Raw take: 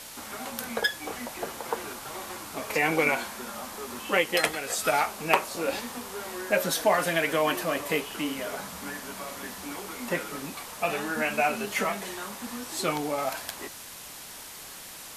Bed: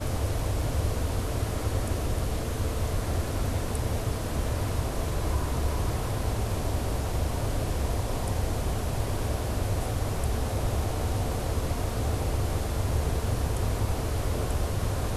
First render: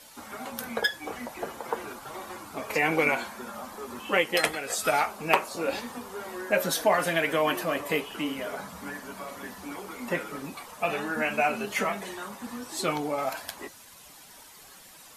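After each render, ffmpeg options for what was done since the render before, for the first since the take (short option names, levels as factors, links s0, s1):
-af "afftdn=nr=10:nf=-43"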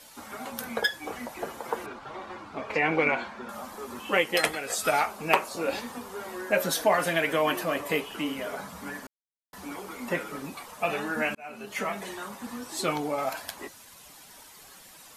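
-filter_complex "[0:a]asettb=1/sr,asplit=3[s0][s1][s2];[s0]atrim=end=1.864[s3];[s1]atrim=start=1.86:end=3.49,asetpts=PTS-STARTPTS,afade=t=in:d=0.004:c=qsin,afade=t=out:st=1.626:d=0.004:c=qsin,lowpass=3600[s4];[s2]atrim=start=3.486[s5];[s3][s4]acrossfade=d=0.004:c1=hsin:c2=qsin[s6];[s6][s5]acrossfade=d=0.004:c1=qsin:c2=hsin,asplit=4[s7][s8][s9][s10];[s7]atrim=end=9.07,asetpts=PTS-STARTPTS,afade=t=out:st=9.066:d=0.004:c=hsin[s11];[s8]atrim=start=9.07:end=9.53,asetpts=PTS-STARTPTS,volume=0[s12];[s9]atrim=start=9.53:end=11.35,asetpts=PTS-STARTPTS,afade=t=in:d=0.004:c=hsin,afade=t=out:st=1.816:d=0.004:c=hsin[s13];[s10]atrim=start=11.35,asetpts=PTS-STARTPTS,afade=t=in:d=0.7[s14];[s11][s12][s13][s14]concat=n=4:v=0:a=1"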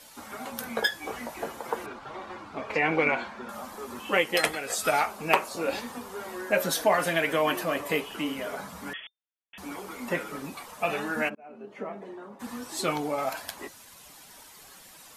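-filter_complex "[0:a]asettb=1/sr,asplit=3[s0][s1][s2];[s0]atrim=end=0.764[s3];[s1]atrim=start=0.76:end=1.48,asetpts=PTS-STARTPTS,afade=t=in:d=0.004:c=qsin,afade=t=out:st=0.716:d=0.004:c=qsin,asplit=2[s4][s5];[s5]adelay=18,volume=0.501[s6];[s4][s6]amix=inputs=2:normalize=0,atrim=end_sample=31752[s7];[s2]atrim=start=1.476[s8];[s3][s7]acrossfade=d=0.004:c1=hsin:c2=qsin[s9];[s9][s8]acrossfade=d=0.004:c1=qsin:c2=hsin,asettb=1/sr,asplit=3[s10][s11][s12];[s10]atrim=end=8.934[s13];[s11]atrim=start=8.93:end=9.58,asetpts=PTS-STARTPTS,afade=t=in:d=0.004:c=qsin,afade=t=out:st=0.646:d=0.004:c=qsin,lowpass=f=3100:t=q:w=0.5098,lowpass=f=3100:t=q:w=0.6013,lowpass=f=3100:t=q:w=0.9,lowpass=f=3100:t=q:w=2.563,afreqshift=-3600[s14];[s12]atrim=start=9.576[s15];[s13][s14]acrossfade=d=0.004:c1=hsin:c2=qsin[s16];[s16][s15]acrossfade=d=0.004:c1=qsin:c2=hsin,asplit=3[s17][s18][s19];[s17]afade=t=out:st=11.28:d=0.02[s20];[s18]bandpass=f=360:t=q:w=0.98,afade=t=in:st=11.28:d=0.02,afade=t=out:st=12.39:d=0.02[s21];[s19]afade=t=in:st=12.39:d=0.02[s22];[s20][s21][s22]amix=inputs=3:normalize=0"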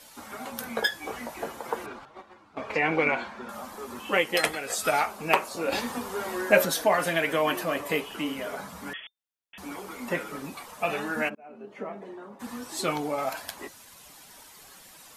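-filter_complex "[0:a]asettb=1/sr,asplit=3[s0][s1][s2];[s0]atrim=end=2.054[s3];[s1]atrim=start=2.05:end=2.59,asetpts=PTS-STARTPTS,afade=t=in:d=0.004:c=qsin,afade=t=out:st=0.536:d=0.004:c=qsin,agate=range=0.224:threshold=0.0126:ratio=16:release=100:detection=peak[s4];[s2]atrim=start=2.586[s5];[s3][s4]acrossfade=d=0.004:c1=hsin:c2=qsin[s6];[s6][s5]acrossfade=d=0.004:c1=qsin:c2=hsin,asplit=3[s7][s8][s9];[s7]atrim=end=5.722[s10];[s8]atrim=start=5.718:end=6.652,asetpts=PTS-STARTPTS,volume=1.88[s11];[s9]atrim=start=6.648[s12];[s10][s11]acrossfade=d=0.004:c1=hsin:c2=hsin[s13];[s13][s12]acrossfade=d=0.004:c1=hsin:c2=hsin"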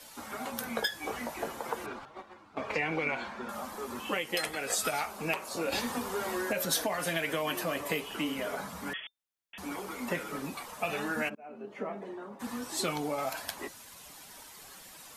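-filter_complex "[0:a]alimiter=limit=0.2:level=0:latency=1:release=182,acrossover=split=150|3000[s0][s1][s2];[s1]acompressor=threshold=0.0316:ratio=6[s3];[s0][s3][s2]amix=inputs=3:normalize=0"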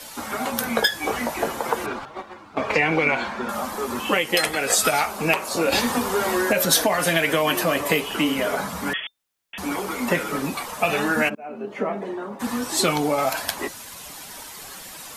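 -af "volume=3.76"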